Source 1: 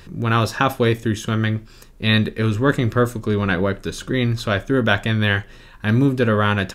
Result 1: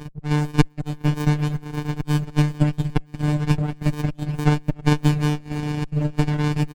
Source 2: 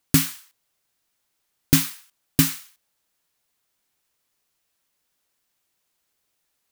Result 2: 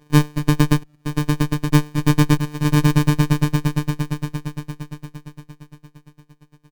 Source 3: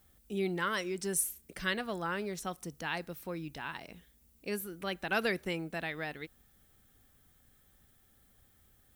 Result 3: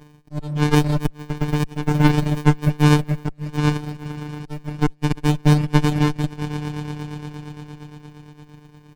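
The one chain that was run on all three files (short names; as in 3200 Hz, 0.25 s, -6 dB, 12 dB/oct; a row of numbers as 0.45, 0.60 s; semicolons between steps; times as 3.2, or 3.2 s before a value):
inharmonic rescaling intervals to 127%; HPF 86 Hz 12 dB/oct; on a send: swelling echo 0.115 s, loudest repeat 5, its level -18 dB; on the sum: auto swell 0.438 s; robotiser 149 Hz; outdoor echo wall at 31 m, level -17 dB; reverb removal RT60 0.82 s; low shelf 170 Hz +6 dB; compressor 6:1, threshold -26 dBFS; transient shaper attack +7 dB, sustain -11 dB; dynamic EQ 560 Hz, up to -4 dB, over -44 dBFS; running maximum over 65 samples; normalise peaks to -2 dBFS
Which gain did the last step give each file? +5.0, +16.0, +19.0 dB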